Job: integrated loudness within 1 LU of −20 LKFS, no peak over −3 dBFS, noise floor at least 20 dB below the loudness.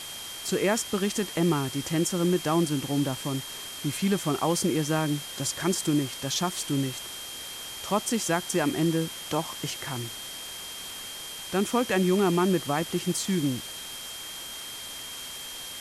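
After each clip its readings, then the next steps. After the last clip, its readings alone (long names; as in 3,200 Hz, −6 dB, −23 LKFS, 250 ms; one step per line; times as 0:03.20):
interfering tone 3,200 Hz; level of the tone −40 dBFS; background noise floor −39 dBFS; target noise floor −48 dBFS; integrated loudness −28.0 LKFS; sample peak −12.5 dBFS; target loudness −20.0 LKFS
→ notch filter 3,200 Hz, Q 30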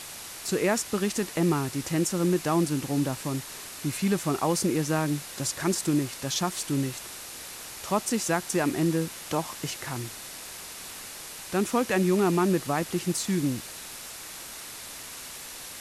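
interfering tone none found; background noise floor −41 dBFS; target noise floor −49 dBFS
→ broadband denoise 8 dB, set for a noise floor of −41 dBFS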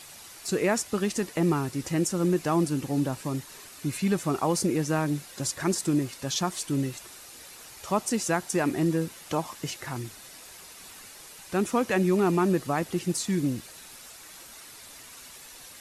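background noise floor −47 dBFS; target noise floor −48 dBFS
→ broadband denoise 6 dB, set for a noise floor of −47 dBFS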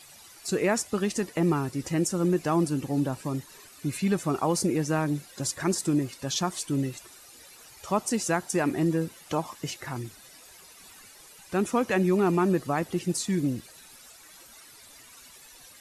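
background noise floor −51 dBFS; integrated loudness −28.0 LKFS; sample peak −13.0 dBFS; target loudness −20.0 LKFS
→ level +8 dB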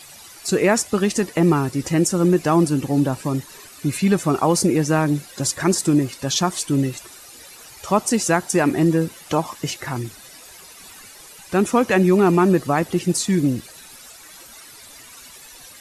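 integrated loudness −20.0 LKFS; sample peak −5.0 dBFS; background noise floor −43 dBFS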